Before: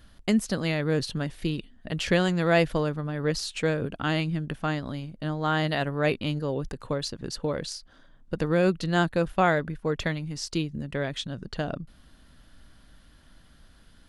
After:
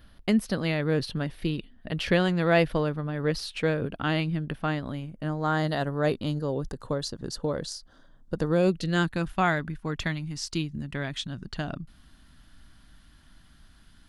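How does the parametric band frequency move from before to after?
parametric band −11 dB 0.61 octaves
0:04.58 7,200 Hz
0:05.71 2,400 Hz
0:08.49 2,400 Hz
0:09.16 500 Hz

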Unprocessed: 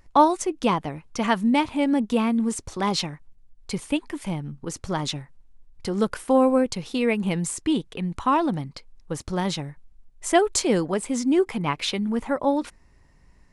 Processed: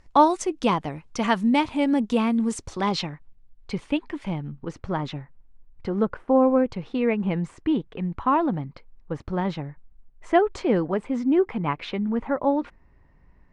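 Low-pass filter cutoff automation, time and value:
0:02.64 7,900 Hz
0:03.11 3,400 Hz
0:04.45 3,400 Hz
0:04.91 2,100 Hz
0:05.86 2,100 Hz
0:06.31 1,000 Hz
0:06.56 2,000 Hz

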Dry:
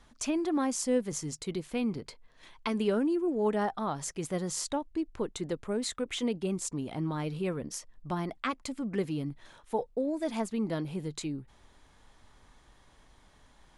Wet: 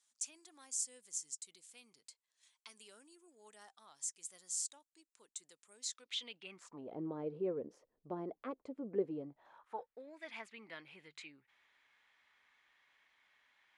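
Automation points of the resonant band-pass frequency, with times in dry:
resonant band-pass, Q 2.6
0:05.71 7,900 Hz
0:06.51 2,200 Hz
0:06.92 450 Hz
0:09.11 450 Hz
0:10.03 2,200 Hz

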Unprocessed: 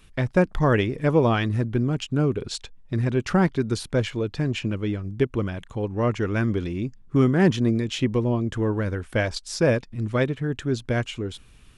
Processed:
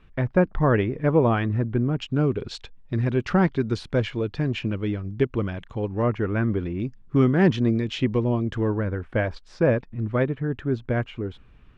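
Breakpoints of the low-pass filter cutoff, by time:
2,000 Hz
from 0:02.01 3,900 Hz
from 0:06.02 2,000 Hz
from 0:06.80 4,000 Hz
from 0:08.74 1,900 Hz

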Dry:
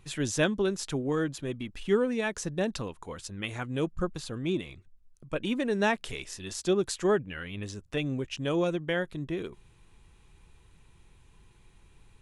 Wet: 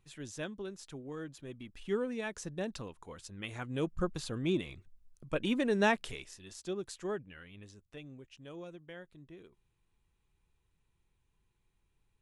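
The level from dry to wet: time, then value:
0:01.09 −14.5 dB
0:01.98 −8 dB
0:03.28 −8 dB
0:04.18 −1.5 dB
0:05.97 −1.5 dB
0:06.40 −12 dB
0:07.24 −12 dB
0:08.18 −19 dB

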